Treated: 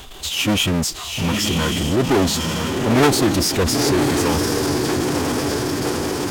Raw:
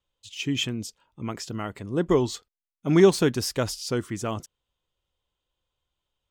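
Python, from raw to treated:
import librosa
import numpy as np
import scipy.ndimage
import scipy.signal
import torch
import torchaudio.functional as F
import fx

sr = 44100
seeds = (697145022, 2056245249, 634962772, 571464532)

y = fx.echo_diffused(x, sr, ms=973, feedback_pct=50, wet_db=-7.5)
y = fx.power_curve(y, sr, exponent=0.35)
y = fx.pitch_keep_formants(y, sr, semitones=-5.0)
y = y * librosa.db_to_amplitude(-3.5)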